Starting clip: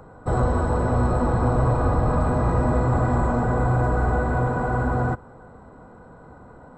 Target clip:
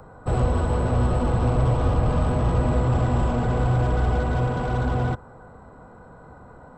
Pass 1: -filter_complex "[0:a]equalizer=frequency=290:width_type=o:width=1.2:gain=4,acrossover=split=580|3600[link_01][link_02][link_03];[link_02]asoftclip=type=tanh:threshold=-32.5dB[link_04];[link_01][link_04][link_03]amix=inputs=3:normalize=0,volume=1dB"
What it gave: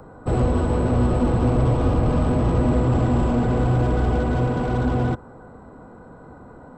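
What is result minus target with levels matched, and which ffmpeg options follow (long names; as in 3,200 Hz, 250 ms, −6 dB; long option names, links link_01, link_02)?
250 Hz band +3.5 dB
-filter_complex "[0:a]equalizer=frequency=290:width_type=o:width=1.2:gain=-3.5,acrossover=split=580|3600[link_01][link_02][link_03];[link_02]asoftclip=type=tanh:threshold=-32.5dB[link_04];[link_01][link_04][link_03]amix=inputs=3:normalize=0,volume=1dB"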